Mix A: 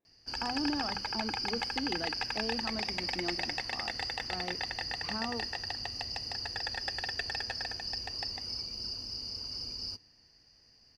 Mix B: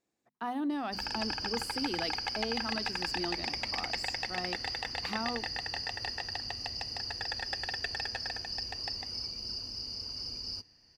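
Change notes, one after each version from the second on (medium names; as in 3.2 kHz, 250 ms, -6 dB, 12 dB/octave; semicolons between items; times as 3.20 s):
speech: remove tape spacing loss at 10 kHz 26 dB; background: entry +0.65 s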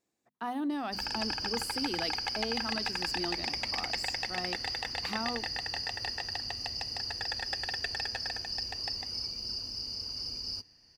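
master: add treble shelf 7.3 kHz +6 dB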